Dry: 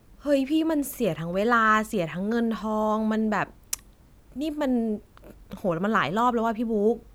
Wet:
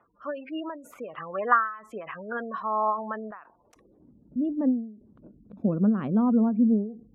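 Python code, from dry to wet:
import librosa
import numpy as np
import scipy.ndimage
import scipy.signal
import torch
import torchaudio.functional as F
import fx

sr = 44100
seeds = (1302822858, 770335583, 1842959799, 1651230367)

y = fx.spec_gate(x, sr, threshold_db=-25, keep='strong')
y = fx.filter_sweep_bandpass(y, sr, from_hz=1200.0, to_hz=220.0, start_s=3.45, end_s=4.16, q=2.5)
y = fx.end_taper(y, sr, db_per_s=110.0)
y = y * librosa.db_to_amplitude(8.5)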